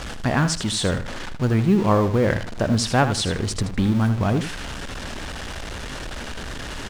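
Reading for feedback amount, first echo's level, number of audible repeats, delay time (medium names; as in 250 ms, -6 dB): 22%, -10.5 dB, 2, 79 ms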